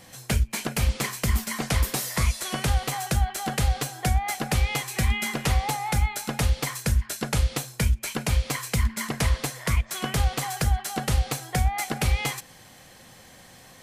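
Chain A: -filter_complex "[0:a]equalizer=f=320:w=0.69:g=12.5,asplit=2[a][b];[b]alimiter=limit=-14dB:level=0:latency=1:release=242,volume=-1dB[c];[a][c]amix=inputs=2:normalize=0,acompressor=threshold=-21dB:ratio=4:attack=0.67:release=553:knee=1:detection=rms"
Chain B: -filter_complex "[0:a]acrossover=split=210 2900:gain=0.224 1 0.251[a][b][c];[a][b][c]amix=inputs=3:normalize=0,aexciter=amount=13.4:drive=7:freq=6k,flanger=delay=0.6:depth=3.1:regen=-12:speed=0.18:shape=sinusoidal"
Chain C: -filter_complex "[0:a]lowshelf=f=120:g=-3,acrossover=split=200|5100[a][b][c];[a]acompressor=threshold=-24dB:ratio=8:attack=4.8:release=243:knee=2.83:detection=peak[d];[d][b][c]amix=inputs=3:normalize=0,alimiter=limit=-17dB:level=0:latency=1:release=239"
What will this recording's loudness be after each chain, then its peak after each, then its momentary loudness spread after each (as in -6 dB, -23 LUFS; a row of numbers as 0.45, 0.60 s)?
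-29.5, -25.0, -31.0 LUFS; -14.0, -7.5, -17.0 dBFS; 4, 5, 5 LU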